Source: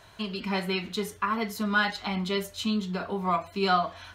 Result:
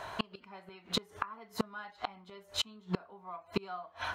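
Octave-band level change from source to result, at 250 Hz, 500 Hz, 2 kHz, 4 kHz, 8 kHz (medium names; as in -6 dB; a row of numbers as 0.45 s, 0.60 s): -12.0 dB, -11.5 dB, -13.5 dB, -5.0 dB, -4.0 dB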